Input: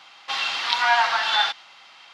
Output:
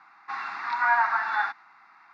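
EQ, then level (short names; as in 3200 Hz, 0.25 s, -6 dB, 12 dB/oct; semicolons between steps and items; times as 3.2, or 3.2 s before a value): BPF 180–2100 Hz; fixed phaser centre 1300 Hz, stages 4; 0.0 dB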